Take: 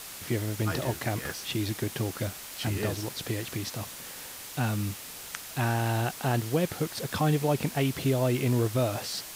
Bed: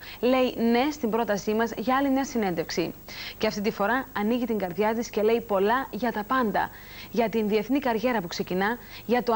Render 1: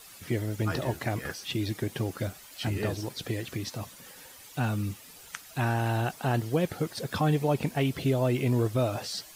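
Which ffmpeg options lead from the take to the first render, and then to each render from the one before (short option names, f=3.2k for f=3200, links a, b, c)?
-af "afftdn=nr=11:nf=-43"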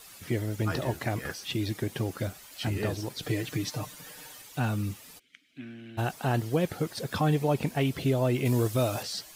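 -filter_complex "[0:a]asettb=1/sr,asplit=3[a][b][c];[a]atrim=end=3.224[d];[b]atrim=start=3.22:end=4.42,asetpts=PTS-STARTPTS,afade=t=in:d=0.004:c=qsin,afade=t=out:st=1.196:d=0.004:c=qsin,aecho=1:1:6.6:0.9,atrim=end_sample=52920[e];[c]atrim=start=4.416[f];[d][e]acrossfade=d=0.004:c1=hsin:c2=qsin[g];[g][f]acrossfade=d=0.004:c1=qsin:c2=hsin,asplit=3[h][i][j];[h]afade=t=out:st=5.18:d=0.02[k];[i]asplit=3[l][m][n];[l]bandpass=f=270:t=q:w=8,volume=0dB[o];[m]bandpass=f=2.29k:t=q:w=8,volume=-6dB[p];[n]bandpass=f=3.01k:t=q:w=8,volume=-9dB[q];[o][p][q]amix=inputs=3:normalize=0,afade=t=in:st=5.18:d=0.02,afade=t=out:st=5.97:d=0.02[r];[j]afade=t=in:st=5.97:d=0.02[s];[k][r][s]amix=inputs=3:normalize=0,asettb=1/sr,asplit=3[t][u][v];[t]atrim=end=8.454[w];[u]atrim=start=8.45:end=9.03,asetpts=PTS-STARTPTS,afade=t=in:d=0.004:c=qsin,afade=t=out:st=0.576:d=0.004:c=qsin,highshelf=f=3.8k:g=9[x];[v]atrim=start=9.026[y];[w][x]acrossfade=d=0.004:c1=hsin:c2=qsin[z];[z][y]acrossfade=d=0.004:c1=qsin:c2=hsin"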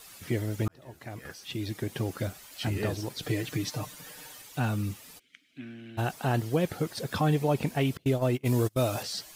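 -filter_complex "[0:a]asettb=1/sr,asplit=3[a][b][c];[a]atrim=end=7.974[d];[b]atrim=start=7.97:end=8.82,asetpts=PTS-STARTPTS,afade=t=in:d=0.004:c=qsin,afade=t=out:st=0.846:d=0.004:c=qsin,agate=range=-30dB:threshold=-27dB:ratio=16:release=100:detection=peak[e];[c]atrim=start=8.816[f];[d][e]acrossfade=d=0.004:c1=hsin:c2=qsin[g];[g][f]acrossfade=d=0.004:c1=qsin:c2=hsin,asplit=2[h][i];[h]atrim=end=0.68,asetpts=PTS-STARTPTS,afade=t=out:st=0.676:d=0.004:c=hsin[j];[i]atrim=start=0.68,asetpts=PTS-STARTPTS,afade=t=in:d=1.41[k];[j][k]concat=n=2:v=0:a=1"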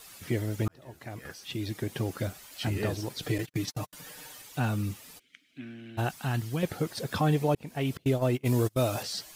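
-filter_complex "[0:a]asettb=1/sr,asplit=3[a][b][c];[a]atrim=end=3.384[d];[b]atrim=start=3.38:end=3.93,asetpts=PTS-STARTPTS,afade=t=in:d=0.004:c=qsin,afade=t=out:st=0.546:d=0.004:c=qsin,agate=range=-48dB:threshold=-36dB:ratio=16:release=100:detection=peak[e];[c]atrim=start=3.926[f];[d][e]acrossfade=d=0.004:c1=hsin:c2=qsin[g];[g][f]acrossfade=d=0.004:c1=qsin:c2=hsin,asettb=1/sr,asplit=3[h][i][j];[h]atrim=end=6.094[k];[i]atrim=start=6.09:end=6.63,asetpts=PTS-STARTPTS,afade=t=in:d=0.004:c=qsin,afade=t=out:st=0.536:d=0.004:c=qsin,equalizer=f=510:t=o:w=1.5:g=-12[l];[j]atrim=start=6.626[m];[k][l]acrossfade=d=0.004:c1=hsin:c2=qsin[n];[n][m]acrossfade=d=0.004:c1=qsin:c2=hsin,asplit=2[o][p];[o]atrim=end=7.55,asetpts=PTS-STARTPTS,afade=t=out:st=7.546:d=0.004:c=hsin[q];[p]atrim=start=7.55,asetpts=PTS-STARTPTS,afade=t=in:d=0.41[r];[q][r]concat=n=2:v=0:a=1"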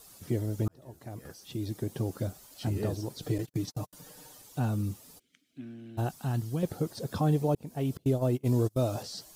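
-filter_complex "[0:a]acrossover=split=7000[a][b];[b]acompressor=threshold=-50dB:ratio=4:attack=1:release=60[c];[a][c]amix=inputs=2:normalize=0,equalizer=f=2.2k:t=o:w=1.8:g=-13"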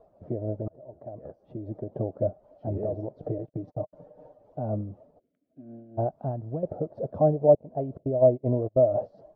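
-af "tremolo=f=4:d=0.54,lowpass=f=620:t=q:w=7.4"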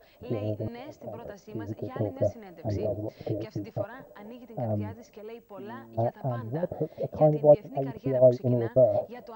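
-filter_complex "[1:a]volume=-20dB[a];[0:a][a]amix=inputs=2:normalize=0"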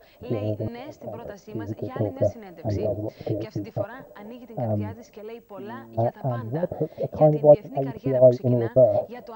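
-af "volume=4dB"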